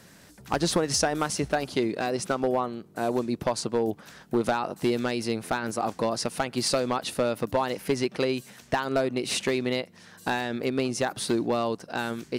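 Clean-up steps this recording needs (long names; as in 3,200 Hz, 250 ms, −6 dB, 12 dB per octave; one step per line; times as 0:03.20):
clipped peaks rebuilt −16 dBFS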